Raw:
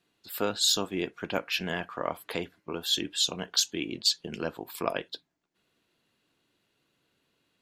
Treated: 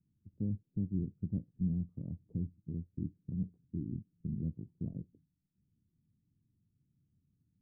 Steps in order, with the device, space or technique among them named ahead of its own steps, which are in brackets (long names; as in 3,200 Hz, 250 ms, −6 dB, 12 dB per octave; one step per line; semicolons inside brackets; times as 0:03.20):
the neighbour's flat through the wall (low-pass filter 190 Hz 24 dB per octave; parametric band 93 Hz +6 dB 0.71 octaves)
level +6.5 dB